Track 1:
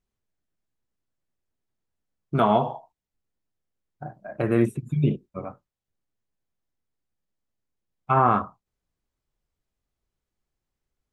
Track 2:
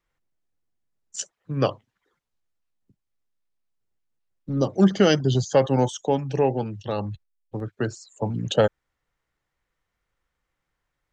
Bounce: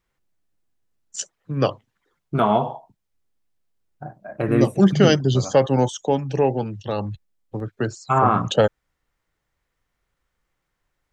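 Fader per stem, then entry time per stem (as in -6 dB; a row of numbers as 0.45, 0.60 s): +1.5, +2.0 dB; 0.00, 0.00 s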